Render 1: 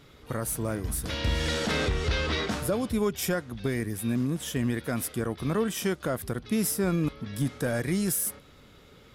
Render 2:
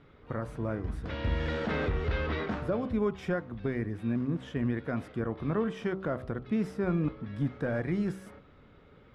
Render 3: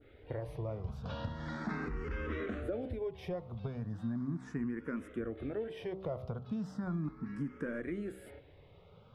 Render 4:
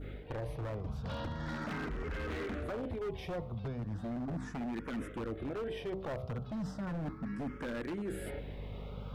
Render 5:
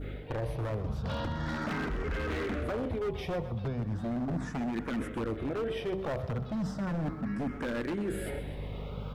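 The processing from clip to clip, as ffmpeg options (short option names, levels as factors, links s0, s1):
-af "lowpass=1900,bandreject=f=63.77:t=h:w=4,bandreject=f=127.54:t=h:w=4,bandreject=f=191.31:t=h:w=4,bandreject=f=255.08:t=h:w=4,bandreject=f=318.85:t=h:w=4,bandreject=f=382.62:t=h:w=4,bandreject=f=446.39:t=h:w=4,bandreject=f=510.16:t=h:w=4,bandreject=f=573.93:t=h:w=4,bandreject=f=637.7:t=h:w=4,bandreject=f=701.47:t=h:w=4,bandreject=f=765.24:t=h:w=4,bandreject=f=829.01:t=h:w=4,bandreject=f=892.78:t=h:w=4,bandreject=f=956.55:t=h:w=4,bandreject=f=1020.32:t=h:w=4,bandreject=f=1084.09:t=h:w=4,bandreject=f=1147.86:t=h:w=4,bandreject=f=1211.63:t=h:w=4,bandreject=f=1275.4:t=h:w=4,bandreject=f=1339.17:t=h:w=4,volume=0.794"
-filter_complex "[0:a]adynamicequalizer=threshold=0.00251:dfrequency=2600:dqfactor=0.7:tfrequency=2600:tqfactor=0.7:attack=5:release=100:ratio=0.375:range=2:mode=cutabove:tftype=bell,acompressor=threshold=0.0251:ratio=6,asplit=2[s0][s1];[s1]afreqshift=0.37[s2];[s0][s2]amix=inputs=2:normalize=1,volume=1.12"
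-af "aeval=exprs='0.02*(abs(mod(val(0)/0.02+3,4)-2)-1)':c=same,aeval=exprs='val(0)+0.002*(sin(2*PI*50*n/s)+sin(2*PI*2*50*n/s)/2+sin(2*PI*3*50*n/s)/3+sin(2*PI*4*50*n/s)/4+sin(2*PI*5*50*n/s)/5)':c=same,areverse,acompressor=threshold=0.00355:ratio=5,areverse,volume=3.98"
-af "aecho=1:1:127|254|381|508:0.2|0.0798|0.0319|0.0128,volume=1.78"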